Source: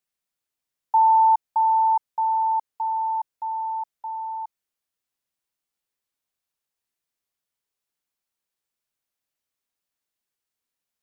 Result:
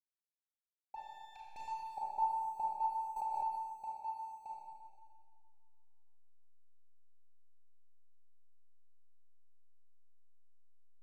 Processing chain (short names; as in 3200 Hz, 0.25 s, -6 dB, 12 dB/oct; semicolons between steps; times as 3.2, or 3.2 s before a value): steep low-pass 800 Hz 96 dB/oct; tilt -2.5 dB/oct; negative-ratio compressor -36 dBFS, ratio -0.5; 0.96–1.68 tube stage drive 47 dB, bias 0.35; backlash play -57.5 dBFS; Schroeder reverb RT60 1.8 s, combs from 29 ms, DRR -5 dB; 3.16–3.71 backwards sustainer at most 25 dB/s; gain -1.5 dB